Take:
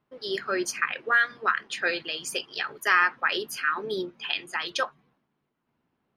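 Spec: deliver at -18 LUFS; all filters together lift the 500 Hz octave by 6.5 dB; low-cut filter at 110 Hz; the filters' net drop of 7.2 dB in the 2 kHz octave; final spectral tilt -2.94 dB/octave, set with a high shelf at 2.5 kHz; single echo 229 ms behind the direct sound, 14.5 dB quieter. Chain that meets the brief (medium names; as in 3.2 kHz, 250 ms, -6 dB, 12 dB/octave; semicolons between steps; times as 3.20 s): high-pass 110 Hz; peaking EQ 500 Hz +9 dB; peaking EQ 2 kHz -7.5 dB; treble shelf 2.5 kHz -6.5 dB; delay 229 ms -14.5 dB; trim +11 dB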